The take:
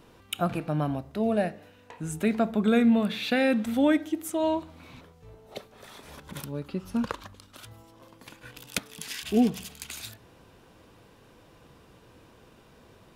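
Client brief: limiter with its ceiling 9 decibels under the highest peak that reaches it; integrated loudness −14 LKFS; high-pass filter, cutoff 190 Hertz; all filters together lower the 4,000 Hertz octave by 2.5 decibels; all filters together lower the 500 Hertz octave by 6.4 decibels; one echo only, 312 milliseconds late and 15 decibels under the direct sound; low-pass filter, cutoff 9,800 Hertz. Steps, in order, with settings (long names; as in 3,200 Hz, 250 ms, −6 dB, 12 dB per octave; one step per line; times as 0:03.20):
high-pass filter 190 Hz
low-pass filter 9,800 Hz
parametric band 500 Hz −8 dB
parametric band 4,000 Hz −3 dB
brickwall limiter −20 dBFS
single-tap delay 312 ms −15 dB
level +18.5 dB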